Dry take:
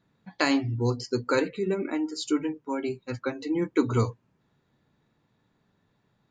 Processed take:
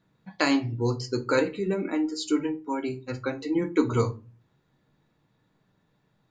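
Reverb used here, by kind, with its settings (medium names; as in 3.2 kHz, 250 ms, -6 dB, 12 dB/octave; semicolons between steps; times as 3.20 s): simulated room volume 140 m³, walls furnished, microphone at 0.57 m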